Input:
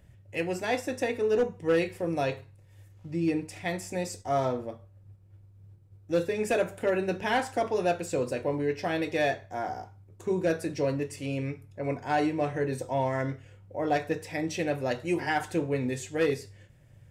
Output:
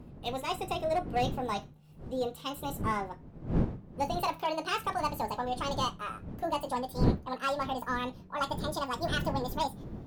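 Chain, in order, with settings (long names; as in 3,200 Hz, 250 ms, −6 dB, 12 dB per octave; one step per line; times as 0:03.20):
gliding playback speed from 142% → 198%
wind on the microphone 220 Hz −33 dBFS
level −4.5 dB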